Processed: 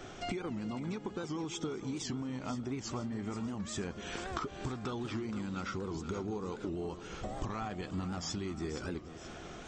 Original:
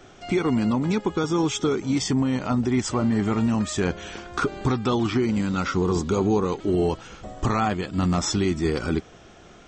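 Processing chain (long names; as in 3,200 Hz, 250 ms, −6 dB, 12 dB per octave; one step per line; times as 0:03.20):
downward compressor 16 to 1, threshold −36 dBFS, peak gain reduction 19 dB
on a send: echo with a time of its own for lows and highs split 600 Hz, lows 190 ms, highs 476 ms, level −11.5 dB
on the sum: wow of a warped record 78 rpm, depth 160 cents
level +1 dB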